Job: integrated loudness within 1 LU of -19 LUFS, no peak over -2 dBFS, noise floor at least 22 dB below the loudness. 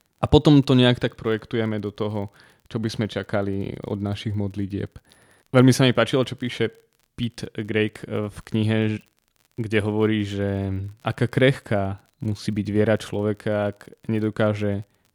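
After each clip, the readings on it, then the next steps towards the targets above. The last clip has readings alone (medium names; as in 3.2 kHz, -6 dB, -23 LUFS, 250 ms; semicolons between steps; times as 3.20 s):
tick rate 41 per s; loudness -23.0 LUFS; peak level -1.5 dBFS; loudness target -19.0 LUFS
-> de-click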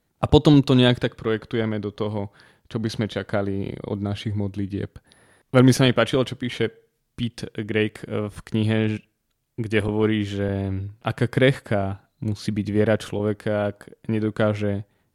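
tick rate 0.066 per s; loudness -23.0 LUFS; peak level -1.5 dBFS; loudness target -19.0 LUFS
-> trim +4 dB; peak limiter -2 dBFS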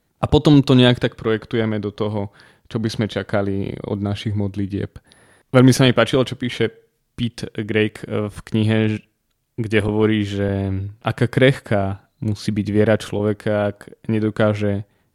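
loudness -19.5 LUFS; peak level -2.0 dBFS; noise floor -68 dBFS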